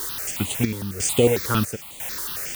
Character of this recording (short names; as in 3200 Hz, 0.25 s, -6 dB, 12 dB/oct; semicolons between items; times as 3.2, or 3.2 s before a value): a quantiser's noise floor 6-bit, dither triangular; chopped level 1 Hz, depth 65%, duty 65%; notches that jump at a steady rate 11 Hz 680–5300 Hz